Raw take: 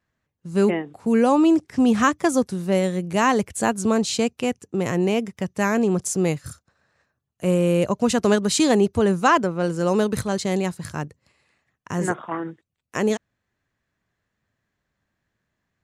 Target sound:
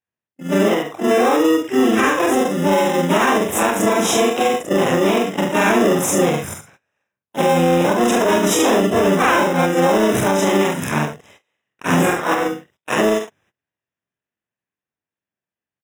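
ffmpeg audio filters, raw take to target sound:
-filter_complex "[0:a]afftfilt=real='re':imag='-im':win_size=4096:overlap=0.75,asplit=2[a][b];[b]aecho=0:1:67|69:0.168|0.299[c];[a][c]amix=inputs=2:normalize=0,dynaudnorm=f=260:g=21:m=6.5dB,asplit=2[d][e];[e]acrusher=samples=28:mix=1:aa=0.000001,volume=-4.5dB[f];[d][f]amix=inputs=2:normalize=0,asplit=2[g][h];[h]asetrate=66075,aresample=44100,atempo=0.66742,volume=-4dB[i];[g][i]amix=inputs=2:normalize=0,highpass=75,acontrast=27,agate=range=-25dB:threshold=-50dB:ratio=16:detection=peak,lowshelf=f=300:g=-10.5,alimiter=limit=-14.5dB:level=0:latency=1:release=384,asuperstop=centerf=4400:order=8:qfactor=3.8,highshelf=f=7.7k:g=-5,volume=9dB"

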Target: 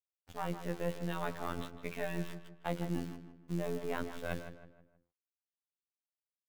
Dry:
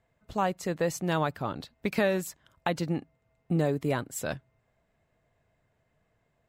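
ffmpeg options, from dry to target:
-filter_complex "[0:a]aeval=exprs='if(lt(val(0),0),0.447*val(0),val(0))':c=same,bandreject=f=50:t=h:w=6,bandreject=f=100:t=h:w=6,bandreject=f=150:t=h:w=6,bandreject=f=200:t=h:w=6,bandreject=f=250:t=h:w=6,bandreject=f=300:t=h:w=6,bandreject=f=350:t=h:w=6,bandreject=f=400:t=h:w=6,bandreject=f=450:t=h:w=6,bandreject=f=500:t=h:w=6,areverse,acompressor=threshold=-44dB:ratio=5,areverse,aresample=8000,aresample=44100,acrusher=bits=9:mix=0:aa=0.000001,afftfilt=real='hypot(re,im)*cos(PI*b)':imag='0':win_size=2048:overlap=0.75,asplit=2[a][b];[b]adelay=158,lowpass=f=2.5k:p=1,volume=-10dB,asplit=2[c][d];[d]adelay=158,lowpass=f=2.5k:p=1,volume=0.41,asplit=2[e][f];[f]adelay=158,lowpass=f=2.5k:p=1,volume=0.41,asplit=2[g][h];[h]adelay=158,lowpass=f=2.5k:p=1,volume=0.41[i];[a][c][e][g][i]amix=inputs=5:normalize=0,volume=11.5dB"

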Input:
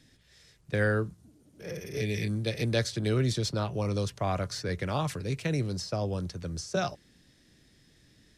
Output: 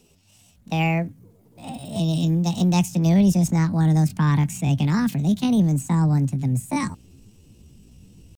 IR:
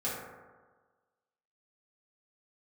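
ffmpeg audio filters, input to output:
-af "asubboost=boost=7.5:cutoff=130,asetrate=68011,aresample=44100,atempo=0.64842,volume=3dB"

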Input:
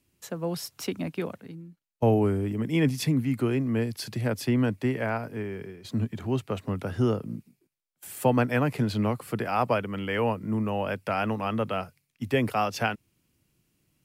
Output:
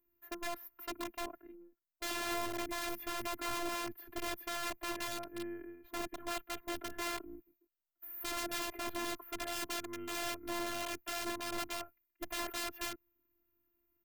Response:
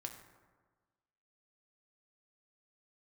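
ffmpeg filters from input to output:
-af "firequalizer=gain_entry='entry(1500,0);entry(4700,-29);entry(9300,-27);entry(14000,12)':delay=0.05:min_phase=1,aeval=exprs='(mod(17.8*val(0)+1,2)-1)/17.8':c=same,afftfilt=real='hypot(re,im)*cos(PI*b)':imag='0':win_size=512:overlap=0.75,volume=-5dB"

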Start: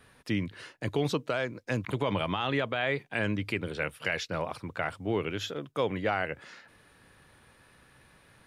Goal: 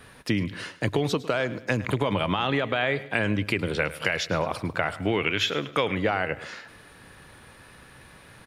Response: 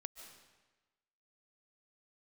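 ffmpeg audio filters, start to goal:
-filter_complex "[0:a]asettb=1/sr,asplit=3[a][b][c];[a]atrim=end=5.004[d];[b]atrim=start=5:end=5.95,asetpts=PTS-STARTPTS,afade=t=in:d=0.004:c=qsin,afade=t=out:st=0.946:d=0.004:c=qsin,equalizer=f=2.3k:w=0.9:g=11[e];[c]atrim=start=5.946[f];[d][e]acrossfade=d=0.004:c1=hsin:c2=qsin[g];[g][f]acrossfade=d=0.004:c1=qsin:c2=hsin,acompressor=threshold=-30dB:ratio=6,aecho=1:1:106|212|318:0.141|0.0565|0.0226,asplit=2[h][i];[1:a]atrim=start_sample=2205,atrim=end_sample=6615[j];[i][j]afir=irnorm=-1:irlink=0,volume=-1.5dB[k];[h][k]amix=inputs=2:normalize=0,volume=6dB"

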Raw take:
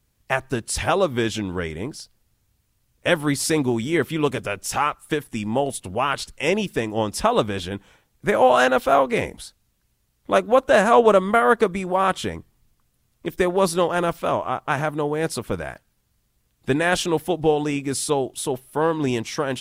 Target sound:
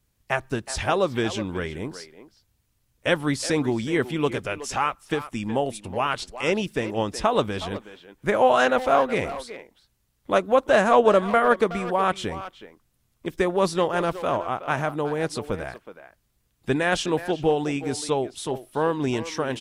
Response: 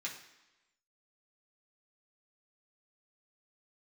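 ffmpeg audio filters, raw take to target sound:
-filter_complex "[0:a]asplit=2[a][b];[b]adelay=370,highpass=300,lowpass=3.4k,asoftclip=type=hard:threshold=-13.5dB,volume=-12dB[c];[a][c]amix=inputs=2:normalize=0,acrossover=split=9000[d][e];[e]acompressor=threshold=-57dB:ratio=4:attack=1:release=60[f];[d][f]amix=inputs=2:normalize=0,volume=-2.5dB"

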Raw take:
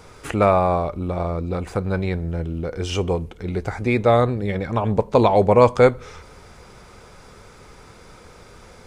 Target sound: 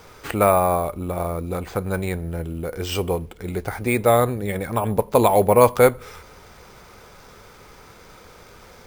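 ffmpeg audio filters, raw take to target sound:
-af "lowshelf=f=370:g=-4.5,acrusher=samples=4:mix=1:aa=0.000001,volume=1dB"

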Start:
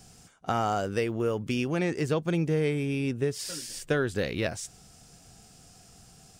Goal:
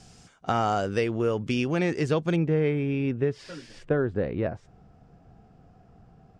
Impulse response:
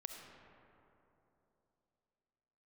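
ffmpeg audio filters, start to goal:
-af "asetnsamples=n=441:p=0,asendcmd='2.36 lowpass f 2300;3.89 lowpass f 1100',lowpass=6.4k,volume=2.5dB"

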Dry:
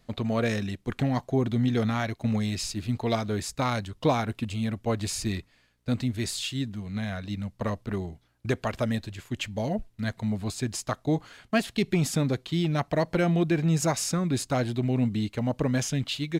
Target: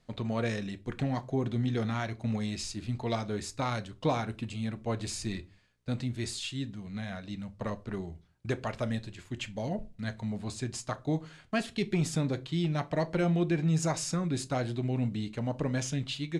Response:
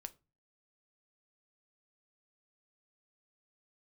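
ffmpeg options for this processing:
-filter_complex "[0:a]lowpass=f=10k:w=0.5412,lowpass=f=10k:w=1.3066[a];[1:a]atrim=start_sample=2205[b];[a][b]afir=irnorm=-1:irlink=0"

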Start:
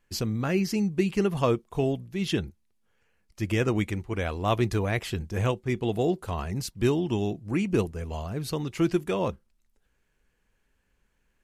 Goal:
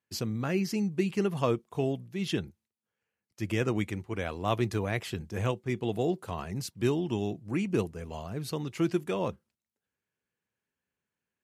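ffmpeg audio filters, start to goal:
-af "agate=range=-10dB:threshold=-57dB:ratio=16:detection=peak,highpass=f=92:w=0.5412,highpass=f=92:w=1.3066,volume=-3.5dB"

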